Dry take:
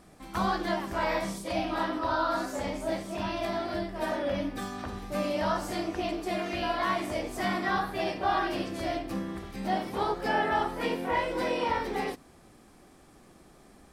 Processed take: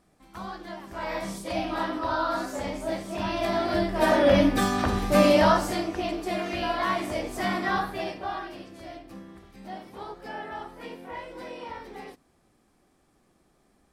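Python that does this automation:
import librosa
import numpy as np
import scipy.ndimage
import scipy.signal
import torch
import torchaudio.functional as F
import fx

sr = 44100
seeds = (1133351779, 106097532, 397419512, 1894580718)

y = fx.gain(x, sr, db=fx.line((0.73, -9.5), (1.35, 1.0), (3.0, 1.0), (4.34, 12.0), (5.32, 12.0), (5.88, 2.0), (7.82, 2.0), (8.58, -10.0)))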